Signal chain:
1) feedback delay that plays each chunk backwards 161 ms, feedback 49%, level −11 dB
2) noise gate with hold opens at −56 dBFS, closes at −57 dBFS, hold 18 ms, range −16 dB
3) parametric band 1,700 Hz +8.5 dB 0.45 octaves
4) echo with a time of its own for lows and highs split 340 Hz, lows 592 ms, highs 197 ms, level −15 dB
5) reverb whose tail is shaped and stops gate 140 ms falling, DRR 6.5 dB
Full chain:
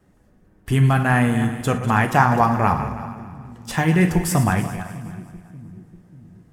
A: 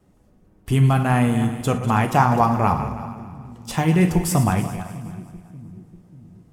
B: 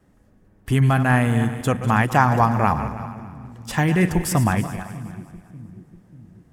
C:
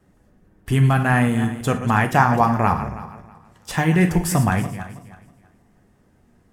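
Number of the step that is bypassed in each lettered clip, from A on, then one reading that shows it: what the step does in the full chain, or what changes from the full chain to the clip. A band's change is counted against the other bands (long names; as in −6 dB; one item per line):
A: 3, 2 kHz band −5.5 dB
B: 5, echo-to-direct ratio −5.5 dB to −13.5 dB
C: 4, change in momentary loudness spread −4 LU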